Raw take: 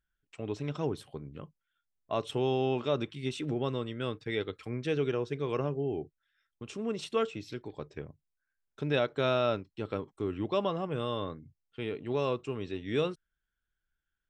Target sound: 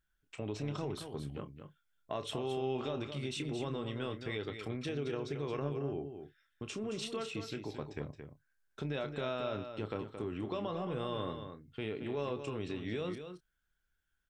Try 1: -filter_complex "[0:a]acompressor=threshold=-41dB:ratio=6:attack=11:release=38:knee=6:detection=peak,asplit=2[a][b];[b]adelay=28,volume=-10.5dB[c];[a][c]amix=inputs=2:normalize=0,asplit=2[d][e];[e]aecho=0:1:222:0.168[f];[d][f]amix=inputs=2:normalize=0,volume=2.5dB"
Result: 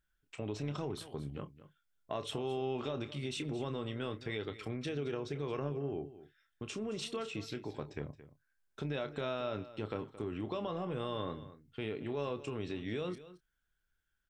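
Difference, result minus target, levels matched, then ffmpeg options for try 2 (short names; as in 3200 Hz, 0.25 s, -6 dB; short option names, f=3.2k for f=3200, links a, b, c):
echo-to-direct -7 dB
-filter_complex "[0:a]acompressor=threshold=-41dB:ratio=6:attack=11:release=38:knee=6:detection=peak,asplit=2[a][b];[b]adelay=28,volume=-10.5dB[c];[a][c]amix=inputs=2:normalize=0,asplit=2[d][e];[e]aecho=0:1:222:0.376[f];[d][f]amix=inputs=2:normalize=0,volume=2.5dB"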